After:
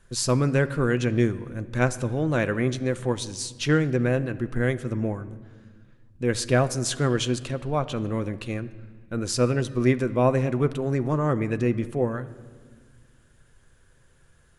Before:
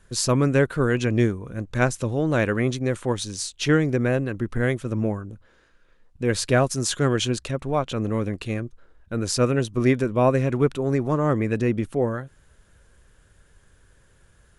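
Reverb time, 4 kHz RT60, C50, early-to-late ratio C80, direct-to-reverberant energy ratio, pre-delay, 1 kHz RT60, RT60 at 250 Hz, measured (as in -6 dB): 1.6 s, 1.2 s, 16.0 dB, 17.5 dB, 11.0 dB, 6 ms, 1.5 s, 2.5 s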